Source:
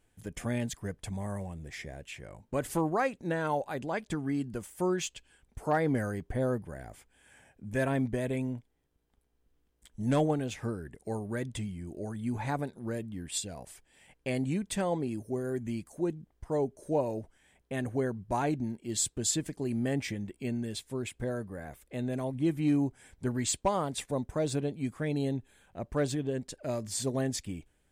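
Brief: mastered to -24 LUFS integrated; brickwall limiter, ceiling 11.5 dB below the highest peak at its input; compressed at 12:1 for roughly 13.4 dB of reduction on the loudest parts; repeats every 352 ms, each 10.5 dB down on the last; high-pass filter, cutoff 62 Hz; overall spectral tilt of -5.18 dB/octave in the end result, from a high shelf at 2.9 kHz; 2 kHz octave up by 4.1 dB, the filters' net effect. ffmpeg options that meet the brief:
-af "highpass=62,equalizer=f=2000:t=o:g=6.5,highshelf=f=2900:g=-4,acompressor=threshold=0.0158:ratio=12,alimiter=level_in=4.73:limit=0.0631:level=0:latency=1,volume=0.211,aecho=1:1:352|704|1056:0.299|0.0896|0.0269,volume=13.3"

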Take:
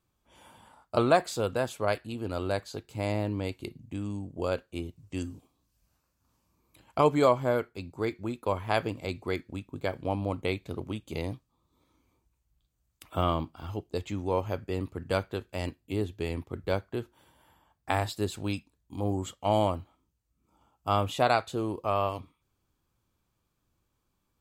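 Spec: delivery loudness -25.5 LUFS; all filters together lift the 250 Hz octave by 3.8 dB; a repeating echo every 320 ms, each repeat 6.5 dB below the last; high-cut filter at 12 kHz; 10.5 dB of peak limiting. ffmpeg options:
-af "lowpass=12000,equalizer=f=250:t=o:g=5,alimiter=limit=0.112:level=0:latency=1,aecho=1:1:320|640|960|1280|1600|1920:0.473|0.222|0.105|0.0491|0.0231|0.0109,volume=2.24"

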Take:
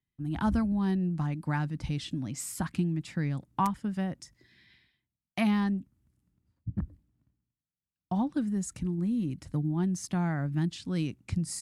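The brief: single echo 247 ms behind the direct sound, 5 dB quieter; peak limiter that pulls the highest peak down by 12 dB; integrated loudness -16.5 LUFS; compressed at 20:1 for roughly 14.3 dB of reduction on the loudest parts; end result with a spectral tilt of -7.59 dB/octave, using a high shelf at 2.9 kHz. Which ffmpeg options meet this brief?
-af "highshelf=f=2900:g=-7.5,acompressor=threshold=0.0141:ratio=20,alimiter=level_in=4.22:limit=0.0631:level=0:latency=1,volume=0.237,aecho=1:1:247:0.562,volume=23.7"

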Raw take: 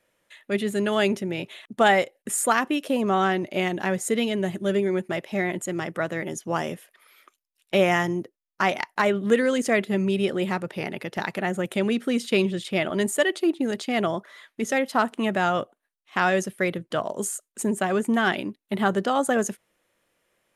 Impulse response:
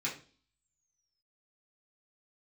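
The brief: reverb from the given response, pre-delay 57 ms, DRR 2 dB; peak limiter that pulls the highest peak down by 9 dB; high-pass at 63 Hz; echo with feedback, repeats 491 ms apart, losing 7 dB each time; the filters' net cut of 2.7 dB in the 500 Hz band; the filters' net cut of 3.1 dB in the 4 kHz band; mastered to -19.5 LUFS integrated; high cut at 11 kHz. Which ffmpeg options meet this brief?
-filter_complex "[0:a]highpass=63,lowpass=11000,equalizer=f=500:t=o:g=-3.5,equalizer=f=4000:t=o:g=-4.5,alimiter=limit=0.133:level=0:latency=1,aecho=1:1:491|982|1473|1964|2455:0.447|0.201|0.0905|0.0407|0.0183,asplit=2[s0][s1];[1:a]atrim=start_sample=2205,adelay=57[s2];[s1][s2]afir=irnorm=-1:irlink=0,volume=0.473[s3];[s0][s3]amix=inputs=2:normalize=0,volume=2.24"

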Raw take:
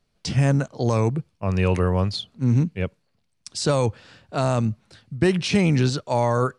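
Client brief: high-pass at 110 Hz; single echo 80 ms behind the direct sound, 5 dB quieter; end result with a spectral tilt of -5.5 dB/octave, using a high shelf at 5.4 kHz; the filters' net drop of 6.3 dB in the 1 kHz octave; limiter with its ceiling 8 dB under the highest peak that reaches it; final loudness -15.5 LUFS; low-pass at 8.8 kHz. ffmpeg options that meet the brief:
-af "highpass=110,lowpass=8800,equalizer=f=1000:t=o:g=-8.5,highshelf=f=5400:g=5.5,alimiter=limit=0.158:level=0:latency=1,aecho=1:1:80:0.562,volume=3.16"

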